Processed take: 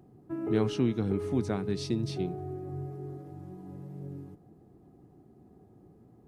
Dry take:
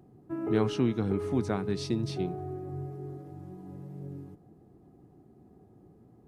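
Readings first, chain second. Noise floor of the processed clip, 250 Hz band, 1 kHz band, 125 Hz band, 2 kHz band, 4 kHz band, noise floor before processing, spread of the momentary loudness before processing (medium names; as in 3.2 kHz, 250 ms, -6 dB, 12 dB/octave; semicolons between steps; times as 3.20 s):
-59 dBFS, -0.5 dB, -3.0 dB, 0.0 dB, -2.0 dB, -0.5 dB, -59 dBFS, 17 LU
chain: dynamic bell 1.1 kHz, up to -4 dB, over -46 dBFS, Q 0.88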